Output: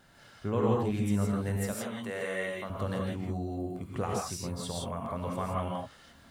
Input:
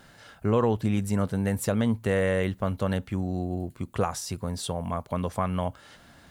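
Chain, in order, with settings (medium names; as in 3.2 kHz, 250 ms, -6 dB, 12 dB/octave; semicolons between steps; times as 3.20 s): 1.57–2.70 s: high-pass 670 Hz 6 dB/octave; gated-style reverb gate 190 ms rising, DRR -2 dB; trim -8 dB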